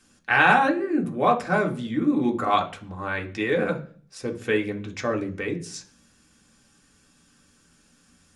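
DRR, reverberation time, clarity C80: 2.0 dB, 0.45 s, 19.0 dB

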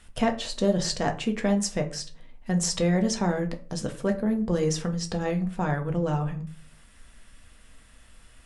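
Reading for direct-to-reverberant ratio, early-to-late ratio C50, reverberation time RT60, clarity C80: 4.0 dB, 14.0 dB, 0.40 s, 18.5 dB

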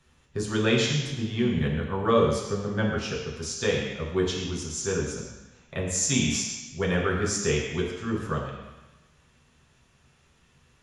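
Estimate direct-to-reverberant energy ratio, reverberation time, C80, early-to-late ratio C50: -4.0 dB, 1.1 s, 4.5 dB, 2.5 dB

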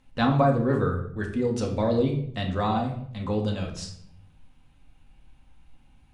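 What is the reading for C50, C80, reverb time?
7.5 dB, 11.0 dB, 0.65 s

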